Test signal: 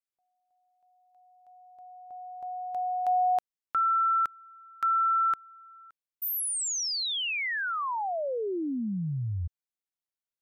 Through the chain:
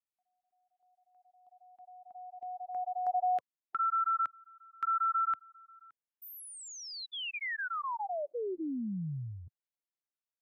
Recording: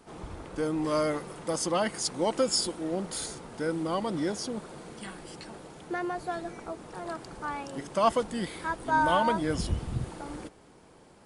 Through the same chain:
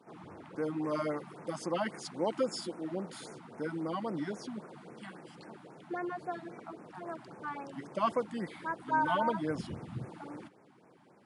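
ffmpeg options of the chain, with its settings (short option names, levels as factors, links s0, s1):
-af "highpass=f=120:w=0.5412,highpass=f=120:w=1.3066,bass=f=250:g=-1,treble=f=4000:g=-13,afftfilt=real='re*(1-between(b*sr/1024,410*pow(3900/410,0.5+0.5*sin(2*PI*3.7*pts/sr))/1.41,410*pow(3900/410,0.5+0.5*sin(2*PI*3.7*pts/sr))*1.41))':imag='im*(1-between(b*sr/1024,410*pow(3900/410,0.5+0.5*sin(2*PI*3.7*pts/sr))/1.41,410*pow(3900/410,0.5+0.5*sin(2*PI*3.7*pts/sr))*1.41))':win_size=1024:overlap=0.75,volume=0.631"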